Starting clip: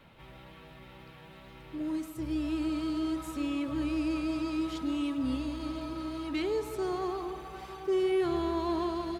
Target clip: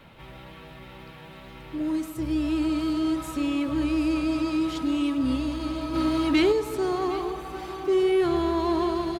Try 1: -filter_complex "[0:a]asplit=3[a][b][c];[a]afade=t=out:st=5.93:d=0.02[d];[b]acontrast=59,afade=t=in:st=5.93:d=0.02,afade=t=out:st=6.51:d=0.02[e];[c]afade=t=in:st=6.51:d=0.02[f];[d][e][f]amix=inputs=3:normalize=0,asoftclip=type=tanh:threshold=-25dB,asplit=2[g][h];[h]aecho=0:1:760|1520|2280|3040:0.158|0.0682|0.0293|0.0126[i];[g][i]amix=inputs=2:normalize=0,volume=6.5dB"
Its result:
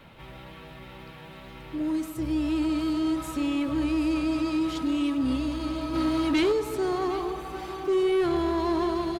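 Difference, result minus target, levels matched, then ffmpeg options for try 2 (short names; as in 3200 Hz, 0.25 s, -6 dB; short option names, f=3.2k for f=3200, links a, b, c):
soft clip: distortion +10 dB
-filter_complex "[0:a]asplit=3[a][b][c];[a]afade=t=out:st=5.93:d=0.02[d];[b]acontrast=59,afade=t=in:st=5.93:d=0.02,afade=t=out:st=6.51:d=0.02[e];[c]afade=t=in:st=6.51:d=0.02[f];[d][e][f]amix=inputs=3:normalize=0,asoftclip=type=tanh:threshold=-18dB,asplit=2[g][h];[h]aecho=0:1:760|1520|2280|3040:0.158|0.0682|0.0293|0.0126[i];[g][i]amix=inputs=2:normalize=0,volume=6.5dB"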